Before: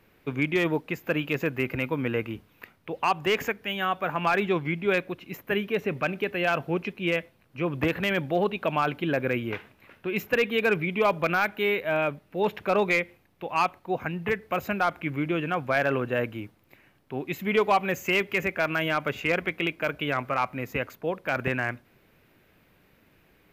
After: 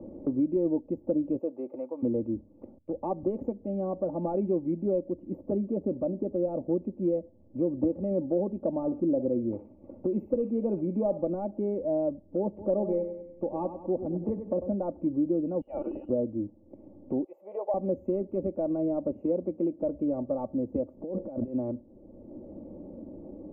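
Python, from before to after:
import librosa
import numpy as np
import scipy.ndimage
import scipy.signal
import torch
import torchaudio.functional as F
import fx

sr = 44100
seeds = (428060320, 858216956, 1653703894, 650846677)

y = fx.highpass(x, sr, hz=fx.line((1.37, 420.0), (2.02, 1200.0)), slope=12, at=(1.37, 2.02), fade=0.02)
y = fx.band_widen(y, sr, depth_pct=70, at=(2.78, 3.23))
y = fx.peak_eq(y, sr, hz=2600.0, db=9.0, octaves=0.77, at=(4.35, 4.82))
y = fx.high_shelf(y, sr, hz=2800.0, db=-9.0, at=(6.12, 7.0))
y = fx.echo_thinned(y, sr, ms=62, feedback_pct=52, hz=1100.0, wet_db=-7.5, at=(8.74, 11.29))
y = fx.echo_feedback(y, sr, ms=96, feedback_pct=41, wet_db=-10, at=(12.57, 14.72), fade=0.02)
y = fx.freq_invert(y, sr, carrier_hz=3000, at=(15.61, 16.09))
y = fx.cheby2_highpass(y, sr, hz=280.0, order=4, stop_db=40, at=(17.24, 17.74))
y = fx.highpass(y, sr, hz=120.0, slope=12, at=(19.11, 19.8))
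y = fx.over_compress(y, sr, threshold_db=-39.0, ratio=-1.0, at=(20.96, 21.54), fade=0.02)
y = scipy.signal.sosfilt(scipy.signal.cheby2(4, 50, 1500.0, 'lowpass', fs=sr, output='sos'), y)
y = y + 0.75 * np.pad(y, (int(3.5 * sr / 1000.0), 0))[:len(y)]
y = fx.band_squash(y, sr, depth_pct=70)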